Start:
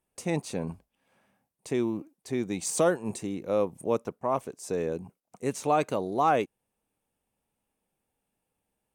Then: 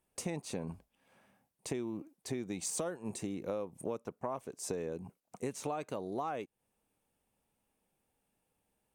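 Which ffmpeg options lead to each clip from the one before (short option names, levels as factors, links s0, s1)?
-af "acompressor=threshold=0.0178:ratio=12,volume=1.12"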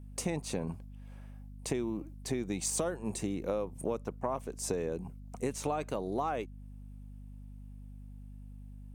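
-af "aeval=exprs='val(0)+0.00316*(sin(2*PI*50*n/s)+sin(2*PI*2*50*n/s)/2+sin(2*PI*3*50*n/s)/3+sin(2*PI*4*50*n/s)/4+sin(2*PI*5*50*n/s)/5)':c=same,volume=1.58"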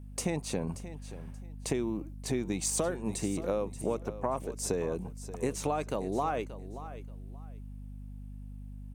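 -af "aecho=1:1:580|1160:0.2|0.0439,volume=1.26"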